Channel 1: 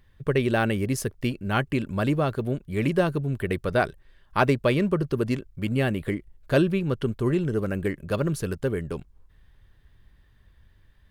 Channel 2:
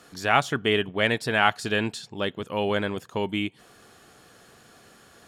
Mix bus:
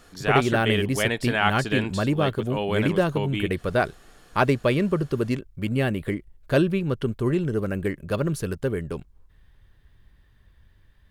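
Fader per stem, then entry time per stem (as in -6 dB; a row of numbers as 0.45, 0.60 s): +0.5, -1.5 dB; 0.00, 0.00 s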